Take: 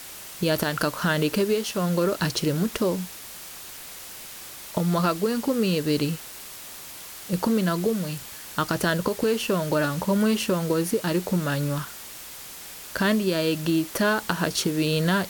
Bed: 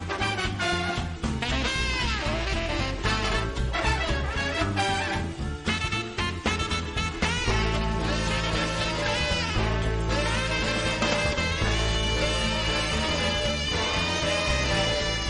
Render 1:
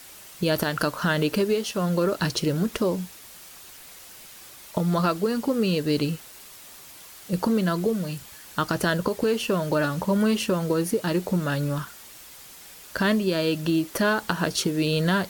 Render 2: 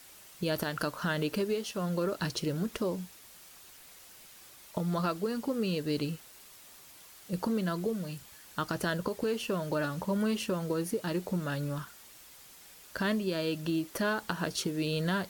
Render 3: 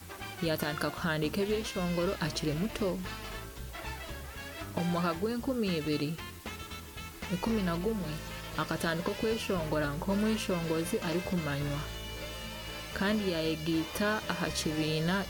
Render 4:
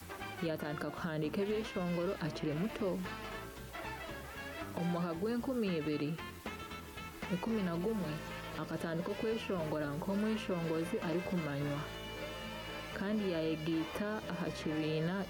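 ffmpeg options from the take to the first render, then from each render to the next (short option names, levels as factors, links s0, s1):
-af "afftdn=nr=6:nf=-41"
-af "volume=0.398"
-filter_complex "[1:a]volume=0.168[s0];[0:a][s0]amix=inputs=2:normalize=0"
-filter_complex "[0:a]acrossover=split=140|680|2700[s0][s1][s2][s3];[s0]acompressor=threshold=0.002:ratio=4[s4];[s1]acompressor=threshold=0.0282:ratio=4[s5];[s2]acompressor=threshold=0.00794:ratio=4[s6];[s3]acompressor=threshold=0.00158:ratio=4[s7];[s4][s5][s6][s7]amix=inputs=4:normalize=0,alimiter=level_in=1.41:limit=0.0631:level=0:latency=1:release=30,volume=0.708"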